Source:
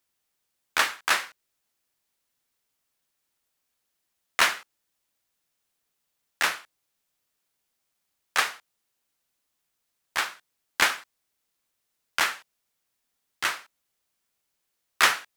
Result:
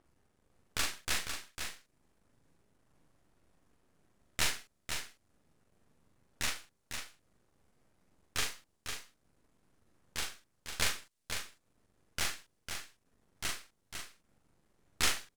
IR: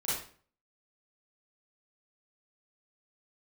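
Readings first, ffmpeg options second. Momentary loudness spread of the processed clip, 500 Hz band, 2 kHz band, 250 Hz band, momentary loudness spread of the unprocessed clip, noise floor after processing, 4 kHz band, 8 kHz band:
14 LU, -9.0 dB, -13.0 dB, -2.5 dB, 15 LU, -77 dBFS, -7.0 dB, -3.5 dB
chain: -filter_complex "[0:a]lowpass=f=11000:w=0.5412,lowpass=f=11000:w=1.3066,equalizer=f=960:t=o:w=2.6:g=-14.5,acrossover=split=1400[s0][s1];[s0]acompressor=mode=upward:threshold=0.00398:ratio=2.5[s2];[s2][s1]amix=inputs=2:normalize=0,aeval=exprs='max(val(0),0)':c=same,asplit=2[s3][s4];[s4]adelay=41,volume=0.631[s5];[s3][s5]amix=inputs=2:normalize=0,aecho=1:1:501:0.447"

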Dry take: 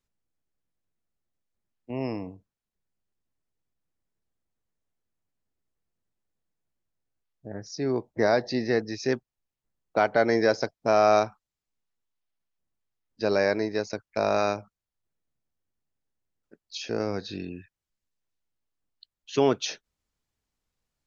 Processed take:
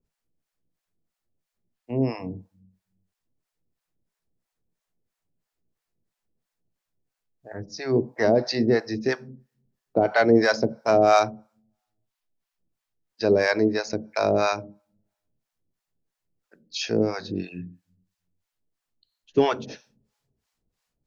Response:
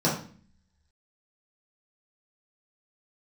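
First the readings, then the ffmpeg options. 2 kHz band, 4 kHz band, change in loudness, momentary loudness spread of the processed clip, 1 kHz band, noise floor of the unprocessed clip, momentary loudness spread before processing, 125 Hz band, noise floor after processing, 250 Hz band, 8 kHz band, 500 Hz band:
+3.5 dB, +3.0 dB, +3.0 dB, 17 LU, +2.0 dB, under -85 dBFS, 16 LU, +5.0 dB, -85 dBFS, +5.0 dB, no reading, +3.0 dB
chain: -filter_complex "[0:a]acontrast=77,asplit=2[s0][s1];[1:a]atrim=start_sample=2205,lowshelf=f=170:g=10[s2];[s1][s2]afir=irnorm=-1:irlink=0,volume=0.0335[s3];[s0][s3]amix=inputs=2:normalize=0,acrossover=split=630[s4][s5];[s4]aeval=exprs='val(0)*(1-1/2+1/2*cos(2*PI*3*n/s))':c=same[s6];[s5]aeval=exprs='val(0)*(1-1/2-1/2*cos(2*PI*3*n/s))':c=same[s7];[s6][s7]amix=inputs=2:normalize=0,volume=1.12"

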